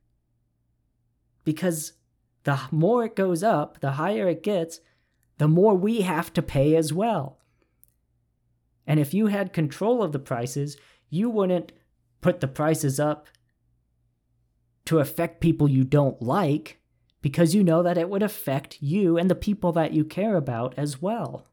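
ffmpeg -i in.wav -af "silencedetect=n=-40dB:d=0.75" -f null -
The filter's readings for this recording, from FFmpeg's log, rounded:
silence_start: 0.00
silence_end: 1.46 | silence_duration: 1.46
silence_start: 7.88
silence_end: 8.87 | silence_duration: 0.99
silence_start: 13.35
silence_end: 14.87 | silence_duration: 1.52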